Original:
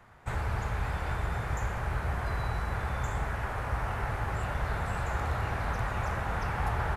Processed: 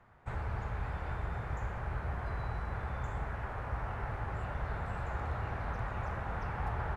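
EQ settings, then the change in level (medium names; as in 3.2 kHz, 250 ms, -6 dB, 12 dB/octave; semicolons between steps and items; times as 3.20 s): low-pass 2 kHz 6 dB/octave; -5.0 dB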